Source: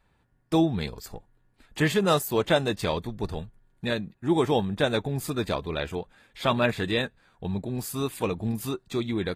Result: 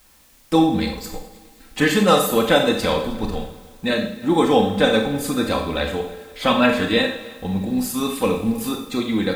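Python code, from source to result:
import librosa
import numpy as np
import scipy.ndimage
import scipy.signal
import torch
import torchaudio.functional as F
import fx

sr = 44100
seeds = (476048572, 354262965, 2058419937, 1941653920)

p1 = x + 0.7 * np.pad(x, (int(3.9 * sr / 1000.0), 0))[:len(x)]
p2 = fx.vibrato(p1, sr, rate_hz=2.6, depth_cents=32.0)
p3 = fx.quant_dither(p2, sr, seeds[0], bits=10, dither='triangular')
p4 = p3 + fx.echo_heads(p3, sr, ms=104, heads='second and third', feedback_pct=46, wet_db=-22.0, dry=0)
p5 = fx.rev_schroeder(p4, sr, rt60_s=0.58, comb_ms=28, drr_db=3.5)
y = F.gain(torch.from_numpy(p5), 4.5).numpy()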